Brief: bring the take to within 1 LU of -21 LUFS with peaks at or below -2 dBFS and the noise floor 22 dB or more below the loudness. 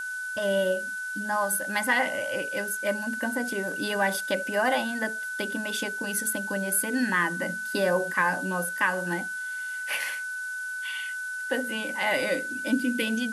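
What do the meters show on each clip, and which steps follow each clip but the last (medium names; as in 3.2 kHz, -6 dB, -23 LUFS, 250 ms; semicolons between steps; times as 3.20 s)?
steady tone 1.5 kHz; tone level -31 dBFS; noise floor -34 dBFS; noise floor target -50 dBFS; loudness -27.5 LUFS; peak level -11.5 dBFS; loudness target -21.0 LUFS
-> band-stop 1.5 kHz, Q 30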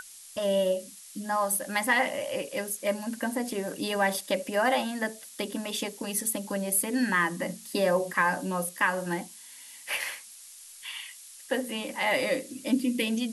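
steady tone not found; noise floor -48 dBFS; noise floor target -51 dBFS
-> noise print and reduce 6 dB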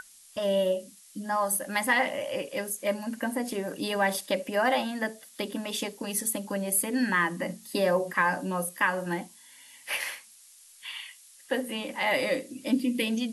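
noise floor -54 dBFS; loudness -29.0 LUFS; peak level -12.5 dBFS; loudness target -21.0 LUFS
-> trim +8 dB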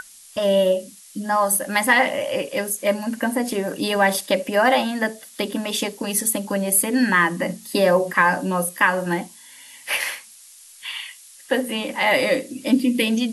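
loudness -21.0 LUFS; peak level -4.5 dBFS; noise floor -46 dBFS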